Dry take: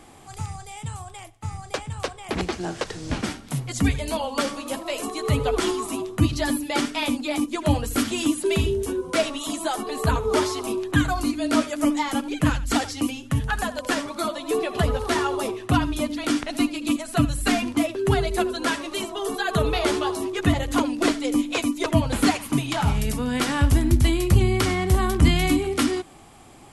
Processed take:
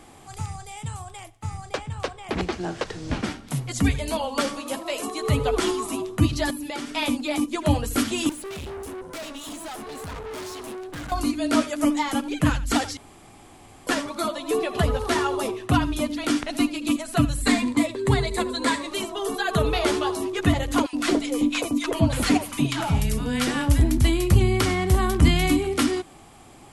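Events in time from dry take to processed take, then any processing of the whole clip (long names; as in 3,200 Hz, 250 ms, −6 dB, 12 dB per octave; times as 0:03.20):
0:01.69–0:03.48: high-shelf EQ 7,400 Hz −10 dB
0:04.59–0:05.22: low-shelf EQ 87 Hz −9 dB
0:06.50–0:06.91: downward compressor, threshold −28 dBFS
0:08.29–0:11.12: tube saturation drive 33 dB, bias 0.75
0:12.97–0:13.87: fill with room tone
0:17.42–0:18.91: EQ curve with evenly spaced ripples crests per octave 1, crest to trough 9 dB
0:20.86–0:23.98: multiband delay without the direct sound highs, lows 70 ms, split 950 Hz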